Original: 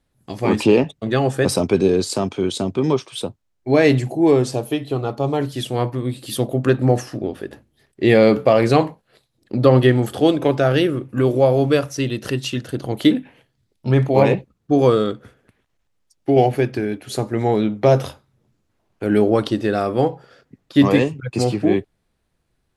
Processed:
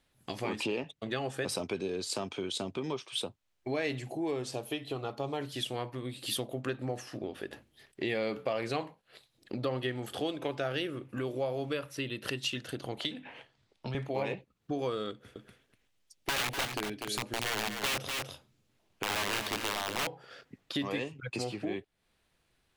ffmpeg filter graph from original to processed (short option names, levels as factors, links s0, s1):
-filter_complex "[0:a]asettb=1/sr,asplit=3[s0][s1][s2];[s0]atrim=end=11.734[s3];[s1]atrim=start=11.73:end=12.28,asetpts=PTS-STARTPTS,afade=t=in:d=0.004:c=qsin,afade=t=out:st=0.546:d=0.004:c=qsin,equalizer=f=6200:w=1.7:g=-11,bandreject=f=720:w=8.2[s4];[s2]atrim=start=12.276[s5];[s3][s4]acrossfade=d=0.004:c1=hsin:c2=qsin[s6];[s6][s5]acrossfade=d=0.004:c1=qsin:c2=hsin,asettb=1/sr,asplit=3[s7][s8][s9];[s7]atrim=end=12.974[s10];[s8]atrim=start=12.97:end=13.95,asetpts=PTS-STARTPTS,afade=t=in:d=0.004:c=qsin,afade=t=out:st=0.976:d=0.004:c=qsin,lowpass=7300,equalizer=f=850:t=o:w=1.9:g=7.5,acrossover=split=140|3000[s11][s12][s13];[s12]acompressor=threshold=0.0282:ratio=3:attack=3.2:release=140:knee=2.83:detection=peak[s14];[s11][s14][s13]amix=inputs=3:normalize=0[s15];[s9]atrim=start=13.946[s16];[s10][s15]acrossfade=d=0.004:c1=hsin:c2=qsin[s17];[s17][s16]acrossfade=d=0.004:c1=qsin:c2=hsin,asettb=1/sr,asplit=3[s18][s19][s20];[s18]atrim=end=15.114[s21];[s19]atrim=start=15.11:end=20.07,asetpts=PTS-STARTPTS,afade=t=in:d=0.004:c=qsin,afade=t=out:st=4.956:d=0.004:c=qsin,equalizer=f=1200:w=0.58:g=-5.5,aeval=exprs='(mod(5.62*val(0)+1,2)-1)/5.62':c=same,aecho=1:1:246:0.355,atrim=end_sample=218736[s22];[s20]atrim=start=20.066[s23];[s21][s22]acrossfade=d=0.004:c1=hsin:c2=qsin[s24];[s24][s23]acrossfade=d=0.004:c1=qsin:c2=hsin,equalizer=f=2900:w=1.1:g=5,acompressor=threshold=0.0224:ratio=3,lowshelf=f=380:g=-7.5"